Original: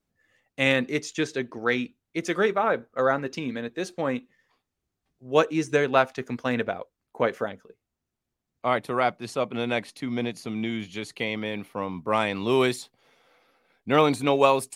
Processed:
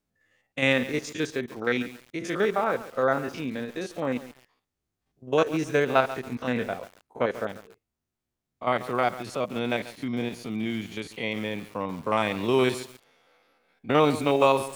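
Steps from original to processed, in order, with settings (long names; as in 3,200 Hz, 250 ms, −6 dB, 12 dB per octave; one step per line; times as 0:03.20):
spectrum averaged block by block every 50 ms
feedback echo at a low word length 139 ms, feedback 35%, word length 6 bits, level −14 dB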